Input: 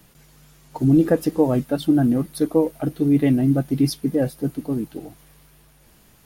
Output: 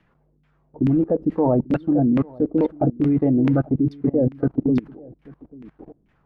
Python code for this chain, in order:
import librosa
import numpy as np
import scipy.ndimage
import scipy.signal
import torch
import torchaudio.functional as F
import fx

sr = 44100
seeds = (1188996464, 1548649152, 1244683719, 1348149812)

y = fx.filter_lfo_lowpass(x, sr, shape='saw_down', hz=2.3, low_hz=240.0, high_hz=2400.0, q=1.9)
y = y + 10.0 ** (-12.0 / 20.0) * np.pad(y, (int(842 * sr / 1000.0), 0))[:len(y)]
y = fx.level_steps(y, sr, step_db=23)
y = y * 10.0 ** (6.0 / 20.0)